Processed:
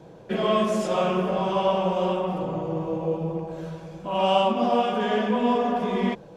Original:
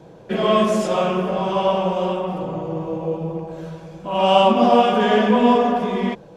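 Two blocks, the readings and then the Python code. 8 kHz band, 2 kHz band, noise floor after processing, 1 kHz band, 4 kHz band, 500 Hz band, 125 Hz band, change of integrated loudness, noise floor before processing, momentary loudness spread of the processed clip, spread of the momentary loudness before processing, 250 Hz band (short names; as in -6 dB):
n/a, -6.0 dB, -46 dBFS, -6.0 dB, -6.0 dB, -5.5 dB, -3.5 dB, -5.5 dB, -44 dBFS, 9 LU, 13 LU, -5.5 dB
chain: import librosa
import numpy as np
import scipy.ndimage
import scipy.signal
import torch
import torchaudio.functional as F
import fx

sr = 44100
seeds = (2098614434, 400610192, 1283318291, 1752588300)

y = fx.rider(x, sr, range_db=3, speed_s=0.5)
y = y * librosa.db_to_amplitude(-5.0)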